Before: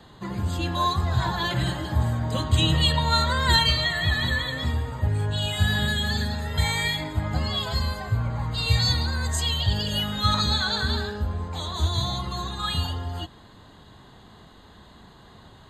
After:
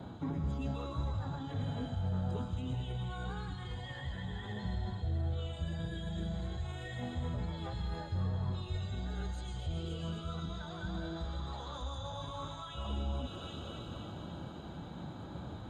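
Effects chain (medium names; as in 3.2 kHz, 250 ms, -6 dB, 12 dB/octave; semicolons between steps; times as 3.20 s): high-pass 83 Hz 24 dB/octave; feedback echo behind a high-pass 265 ms, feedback 63%, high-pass 2.1 kHz, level -8.5 dB; time-frequency box 11.16–12.86 s, 600–10000 Hz +8 dB; reverse; compression 16:1, threshold -37 dBFS, peak gain reduction 22 dB; reverse; peak limiter -34.5 dBFS, peak gain reduction 6.5 dB; tilt shelf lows +9 dB, about 1.2 kHz; formant-preserving pitch shift -4 st; on a send at -10 dB: frequency weighting ITU-R 468 + reverberation RT60 1.0 s, pre-delay 80 ms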